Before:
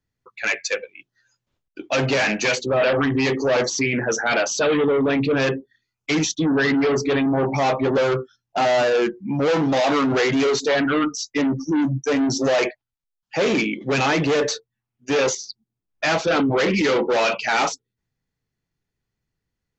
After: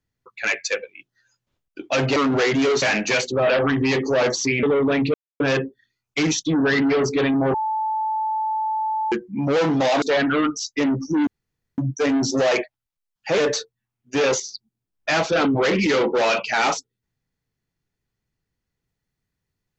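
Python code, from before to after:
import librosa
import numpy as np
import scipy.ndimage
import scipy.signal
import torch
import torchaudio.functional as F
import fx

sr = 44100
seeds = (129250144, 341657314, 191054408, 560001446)

y = fx.edit(x, sr, fx.cut(start_s=3.97, length_s=0.84),
    fx.insert_silence(at_s=5.32, length_s=0.26),
    fx.bleep(start_s=7.46, length_s=1.58, hz=873.0, db=-20.5),
    fx.move(start_s=9.94, length_s=0.66, to_s=2.16),
    fx.insert_room_tone(at_s=11.85, length_s=0.51),
    fx.cut(start_s=13.45, length_s=0.88), tone=tone)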